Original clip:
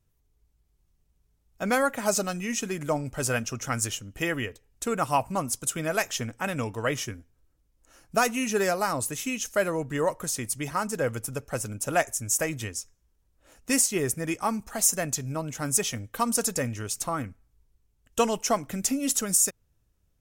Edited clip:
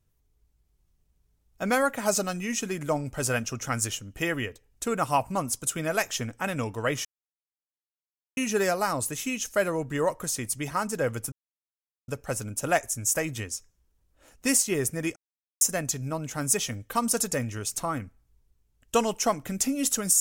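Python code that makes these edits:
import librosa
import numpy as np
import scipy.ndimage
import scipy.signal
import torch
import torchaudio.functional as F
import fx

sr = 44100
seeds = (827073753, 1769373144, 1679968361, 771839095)

y = fx.edit(x, sr, fx.silence(start_s=7.05, length_s=1.32),
    fx.insert_silence(at_s=11.32, length_s=0.76),
    fx.silence(start_s=14.4, length_s=0.45), tone=tone)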